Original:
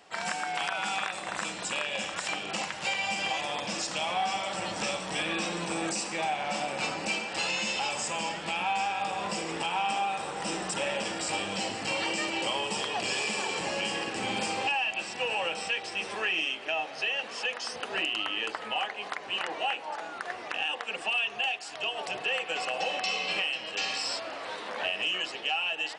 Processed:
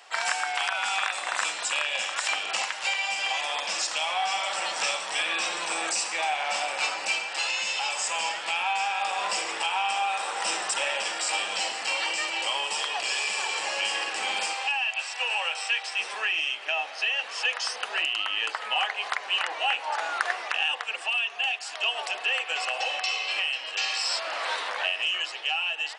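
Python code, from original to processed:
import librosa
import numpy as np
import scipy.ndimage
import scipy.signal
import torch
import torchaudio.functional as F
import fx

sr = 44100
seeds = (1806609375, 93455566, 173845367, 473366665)

y = fx.highpass(x, sr, hz=560.0, slope=12, at=(14.53, 15.99))
y = scipy.signal.sosfilt(scipy.signal.butter(2, 810.0, 'highpass', fs=sr, output='sos'), y)
y = fx.rider(y, sr, range_db=10, speed_s=0.5)
y = y * 10.0 ** (4.5 / 20.0)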